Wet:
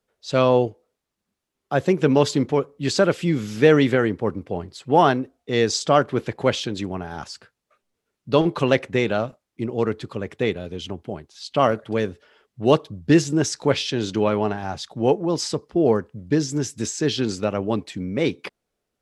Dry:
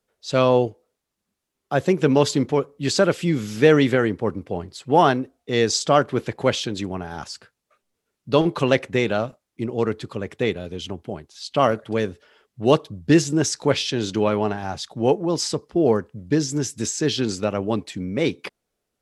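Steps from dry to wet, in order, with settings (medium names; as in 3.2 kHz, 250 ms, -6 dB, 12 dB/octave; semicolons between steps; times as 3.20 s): treble shelf 6.4 kHz -5 dB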